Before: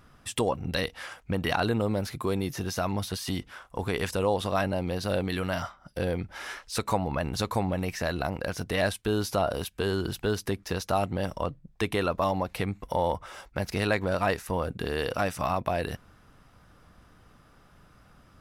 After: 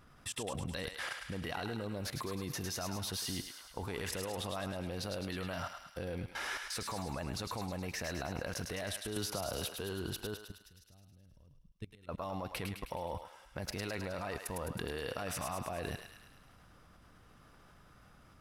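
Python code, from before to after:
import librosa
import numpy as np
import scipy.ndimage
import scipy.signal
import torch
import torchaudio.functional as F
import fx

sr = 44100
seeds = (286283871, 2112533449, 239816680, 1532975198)

y = fx.tone_stack(x, sr, knobs='10-0-1', at=(10.34, 12.09))
y = fx.level_steps(y, sr, step_db=21)
y = fx.echo_thinned(y, sr, ms=105, feedback_pct=63, hz=1000.0, wet_db=-4.5)
y = fx.band_squash(y, sr, depth_pct=100, at=(9.16, 9.76))
y = y * 10.0 ** (2.5 / 20.0)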